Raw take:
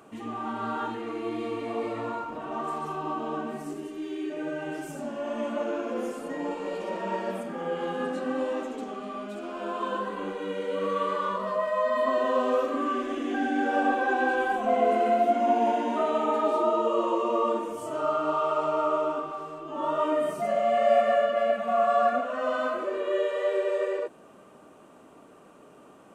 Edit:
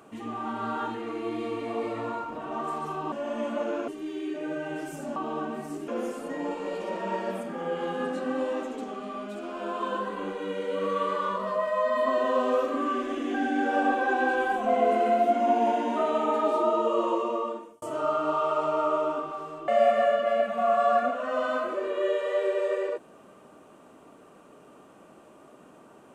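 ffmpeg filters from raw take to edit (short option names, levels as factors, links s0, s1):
-filter_complex "[0:a]asplit=7[s0][s1][s2][s3][s4][s5][s6];[s0]atrim=end=3.122[s7];[s1]atrim=start=5.118:end=5.882[s8];[s2]atrim=start=3.838:end=5.122[s9];[s3]atrim=start=3.118:end=3.842[s10];[s4]atrim=start=5.878:end=17.82,asetpts=PTS-STARTPTS,afade=t=out:st=11.242:d=0.7[s11];[s5]atrim=start=17.82:end=19.682,asetpts=PTS-STARTPTS,afade=t=in:d=0.004:c=hsin[s12];[s6]atrim=start=20.778[s13];[s7][s8]acrossfade=d=0.004:c1=hsin:c2=hsin[s14];[s14][s9]acrossfade=d=0.004:c1=hsin:c2=hsin[s15];[s15][s10]acrossfade=d=0.004:c1=hsin:c2=hsin[s16];[s11][s12]concat=n=2:v=0:a=1[s17];[s16][s17]acrossfade=d=0.004:c1=hsin:c2=hsin[s18];[s18][s13]acrossfade=d=0.004:c1=hsin:c2=hsin"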